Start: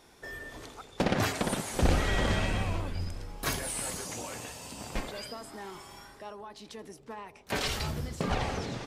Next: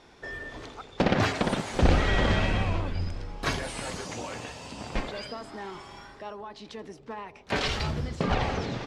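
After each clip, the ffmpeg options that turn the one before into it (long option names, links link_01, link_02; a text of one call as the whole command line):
ffmpeg -i in.wav -af "lowpass=4800,volume=4dB" out.wav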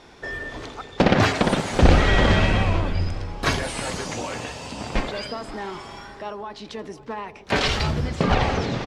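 ffmpeg -i in.wav -filter_complex "[0:a]asplit=2[link_01][link_02];[link_02]adelay=530.6,volume=-18dB,highshelf=frequency=4000:gain=-11.9[link_03];[link_01][link_03]amix=inputs=2:normalize=0,volume=6.5dB" out.wav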